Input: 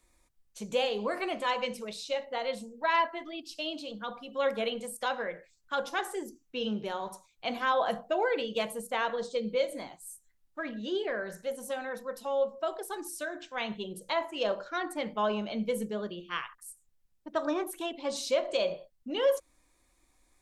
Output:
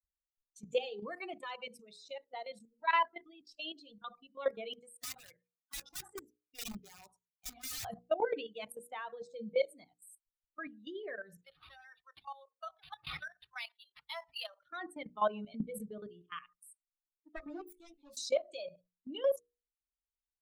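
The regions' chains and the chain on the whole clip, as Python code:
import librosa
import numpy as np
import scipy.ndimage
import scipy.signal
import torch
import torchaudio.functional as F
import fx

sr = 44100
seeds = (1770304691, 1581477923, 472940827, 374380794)

y = fx.chain(x, sr, fx.highpass(hz=240.0, slope=6),
    fx.high_shelf(hz=9700.0, db=-11.5),
    fx.overflow_wrap(gain_db=29.5), at=(4.73, 7.85))
y = fx.chain(y, sr, fx.highpass(hz=740.0, slope=24),
    fx.high_shelf(hz=2800.0, db=11.0),
    fx.resample_linear(factor=6), at=(11.44, 14.69))
y = fx.chain(y, sr, fx.self_delay(depth_ms=0.3),
    fx.low_shelf(hz=76.0, db=11.0),
    fx.ensemble(), at=(17.36, 18.17))
y = fx.bin_expand(y, sr, power=2.0)
y = fx.level_steps(y, sr, step_db=15)
y = fx.hum_notches(y, sr, base_hz=60, count=8)
y = F.gain(torch.from_numpy(y), 3.5).numpy()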